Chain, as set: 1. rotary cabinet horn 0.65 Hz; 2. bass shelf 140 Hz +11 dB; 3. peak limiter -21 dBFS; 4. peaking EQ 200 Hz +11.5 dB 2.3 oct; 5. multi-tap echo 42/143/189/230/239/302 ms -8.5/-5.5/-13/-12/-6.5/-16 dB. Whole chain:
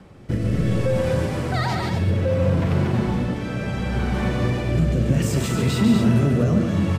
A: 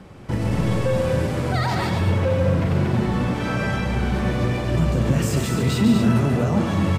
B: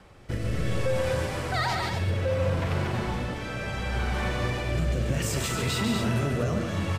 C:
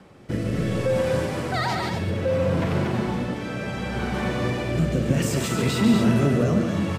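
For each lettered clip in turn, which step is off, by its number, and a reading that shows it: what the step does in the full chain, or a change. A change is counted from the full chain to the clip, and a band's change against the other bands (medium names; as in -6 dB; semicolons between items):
1, 1 kHz band +2.0 dB; 4, 250 Hz band -9.5 dB; 2, 125 Hz band -5.0 dB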